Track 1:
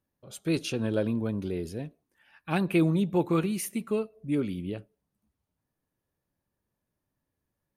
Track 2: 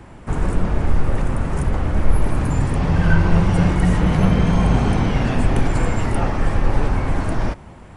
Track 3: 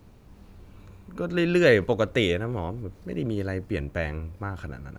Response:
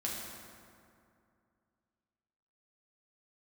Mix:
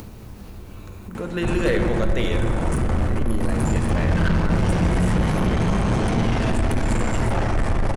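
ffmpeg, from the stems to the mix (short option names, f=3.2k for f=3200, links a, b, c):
-filter_complex "[1:a]asoftclip=type=tanh:threshold=-20dB,adelay=1150,volume=-0.5dB,asplit=2[a][b];[b]volume=-5dB[c];[2:a]volume=-3.5dB,asplit=2[d][e];[e]volume=-5.5dB[f];[a][d]amix=inputs=2:normalize=0,highshelf=f=6.6k:g=9.5,alimiter=limit=-18.5dB:level=0:latency=1:release=28,volume=0dB[g];[3:a]atrim=start_sample=2205[h];[c][f]amix=inputs=2:normalize=0[i];[i][h]afir=irnorm=-1:irlink=0[j];[g][j]amix=inputs=2:normalize=0,acompressor=mode=upward:threshold=-26dB:ratio=2.5,asoftclip=type=hard:threshold=-12.5dB"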